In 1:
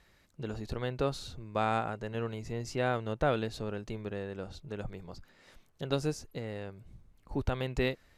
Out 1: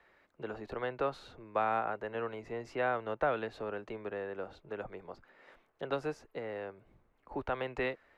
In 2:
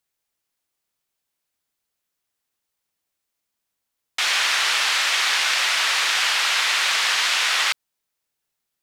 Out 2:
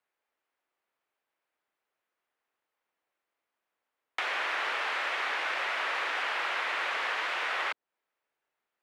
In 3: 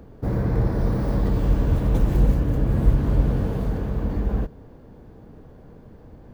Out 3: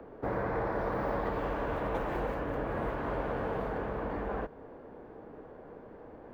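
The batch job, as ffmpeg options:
-filter_complex "[0:a]acrossover=split=230|570[s0][s1][s2];[s0]acompressor=threshold=0.0562:ratio=4[s3];[s1]acompressor=threshold=0.00794:ratio=4[s4];[s2]acompressor=threshold=0.0282:ratio=4[s5];[s3][s4][s5]amix=inputs=3:normalize=0,acrossover=split=310 2500:gain=0.126 1 0.0891[s6][s7][s8];[s6][s7][s8]amix=inputs=3:normalize=0,volume=1.58"

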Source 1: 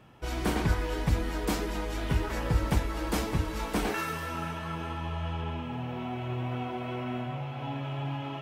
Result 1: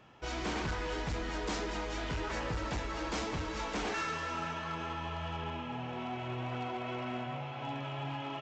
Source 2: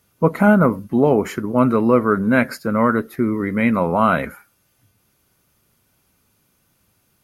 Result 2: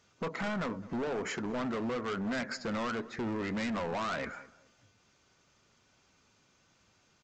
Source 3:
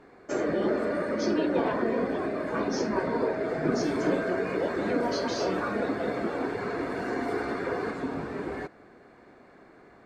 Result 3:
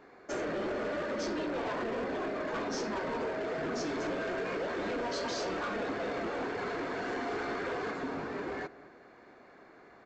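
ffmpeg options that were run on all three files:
-filter_complex "[0:a]lowshelf=f=310:g=-8,acompressor=threshold=0.0447:ratio=3,aresample=16000,asoftclip=type=hard:threshold=0.0266,aresample=44100,asplit=2[s0][s1];[s1]adelay=212,lowpass=f=1400:p=1,volume=0.126,asplit=2[s2][s3];[s3]adelay=212,lowpass=f=1400:p=1,volume=0.31,asplit=2[s4][s5];[s5]adelay=212,lowpass=f=1400:p=1,volume=0.31[s6];[s0][s2][s4][s6]amix=inputs=4:normalize=0"

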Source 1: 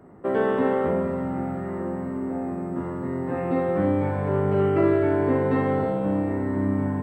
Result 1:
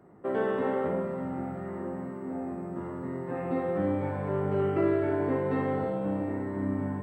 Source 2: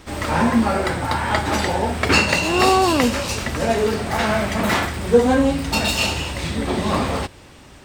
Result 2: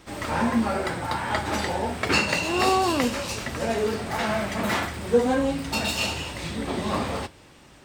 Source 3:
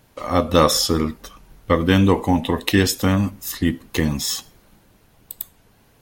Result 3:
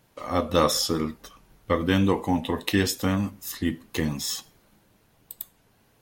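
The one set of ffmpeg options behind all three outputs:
-af "lowshelf=f=63:g=-7,flanger=delay=5.7:depth=4:regen=-71:speed=0.92:shape=sinusoidal,volume=0.841"

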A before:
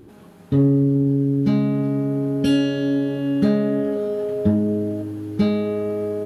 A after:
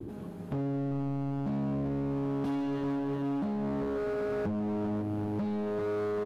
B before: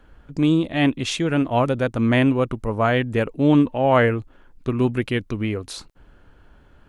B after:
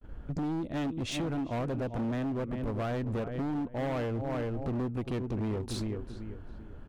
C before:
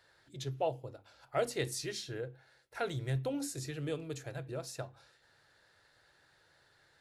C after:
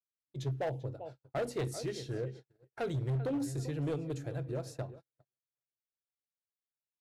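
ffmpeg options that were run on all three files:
-filter_complex "[0:a]tiltshelf=f=810:g=6,asplit=2[s0][s1];[s1]adelay=391,lowpass=f=2900:p=1,volume=0.2,asplit=2[s2][s3];[s3]adelay=391,lowpass=f=2900:p=1,volume=0.33,asplit=2[s4][s5];[s5]adelay=391,lowpass=f=2900:p=1,volume=0.33[s6];[s0][s2][s4][s6]amix=inputs=4:normalize=0,agate=range=0.00447:threshold=0.00501:ratio=16:detection=peak,acompressor=threshold=0.0562:ratio=10,volume=29.9,asoftclip=hard,volume=0.0335"

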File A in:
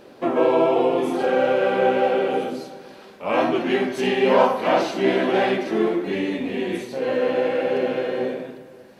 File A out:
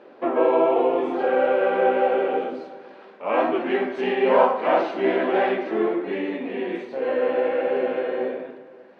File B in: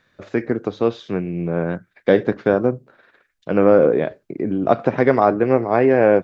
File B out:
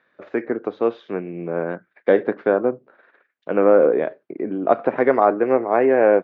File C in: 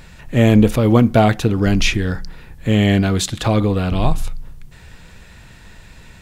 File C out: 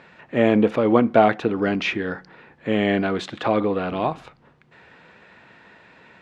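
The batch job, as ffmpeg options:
-af "highpass=300,lowpass=2200"

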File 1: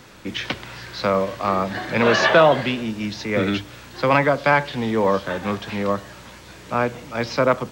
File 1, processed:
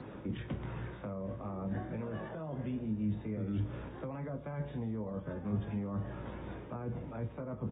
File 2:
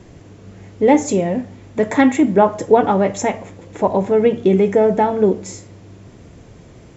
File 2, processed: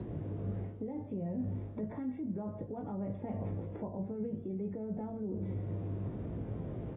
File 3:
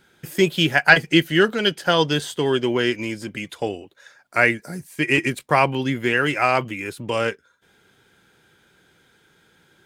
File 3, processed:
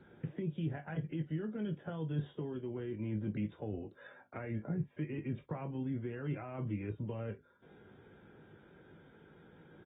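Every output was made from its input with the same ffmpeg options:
-filter_complex "[0:a]alimiter=limit=0.251:level=0:latency=1:release=139,tiltshelf=f=880:g=5,areverse,acompressor=threshold=0.0447:ratio=16,areverse,aecho=1:1:19|47:0.398|0.15,acrossover=split=190[s0][s1];[s1]acompressor=threshold=0.00794:ratio=5[s2];[s0][s2]amix=inputs=2:normalize=0,highpass=f=87:p=1,equalizer=f=4700:w=0.39:g=-11" -ar 32000 -c:a aac -b:a 16k

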